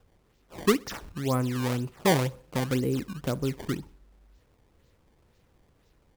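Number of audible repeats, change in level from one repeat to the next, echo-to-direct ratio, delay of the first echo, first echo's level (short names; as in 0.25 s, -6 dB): 2, -7.0 dB, -23.0 dB, 62 ms, -24.0 dB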